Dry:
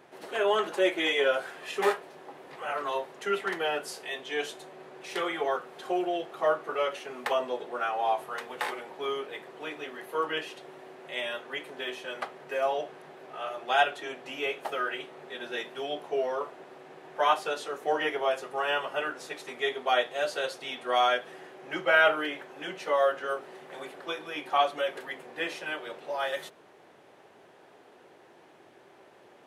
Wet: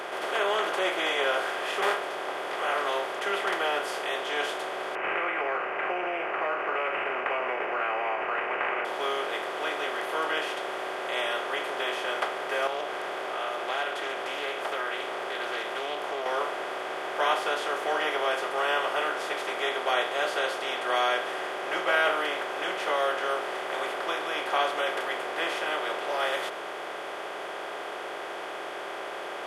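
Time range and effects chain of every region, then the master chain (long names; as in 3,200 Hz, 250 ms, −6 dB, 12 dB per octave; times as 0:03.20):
0:04.95–0:08.85: parametric band 3,900 Hz +12.5 dB 2.1 octaves + downward compressor 3 to 1, threshold −32 dBFS + bad sample-rate conversion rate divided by 8×, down none, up filtered
0:12.67–0:16.26: downward compressor 2 to 1, threshold −44 dBFS + highs frequency-modulated by the lows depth 0.16 ms
whole clip: compressor on every frequency bin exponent 0.4; low-shelf EQ 370 Hz −7.5 dB; level −5 dB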